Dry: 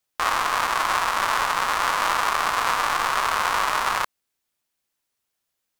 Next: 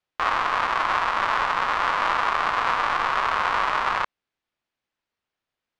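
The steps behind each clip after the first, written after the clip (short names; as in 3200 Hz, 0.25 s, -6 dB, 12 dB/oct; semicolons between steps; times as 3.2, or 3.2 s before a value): LPF 3200 Hz 12 dB/oct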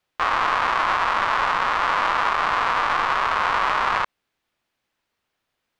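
limiter -18 dBFS, peak gain reduction 10 dB; gain +8 dB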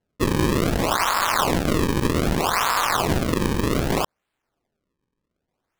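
decimation with a swept rate 36×, swing 160% 0.64 Hz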